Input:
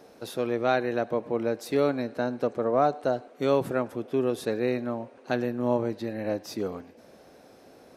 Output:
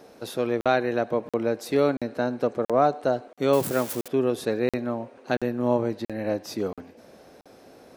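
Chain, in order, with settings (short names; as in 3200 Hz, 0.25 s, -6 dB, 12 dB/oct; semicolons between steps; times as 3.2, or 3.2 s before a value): 3.53–4.08 switching spikes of -26 dBFS; crackling interface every 0.68 s, samples 2048, zero, from 0.61; gain +2.5 dB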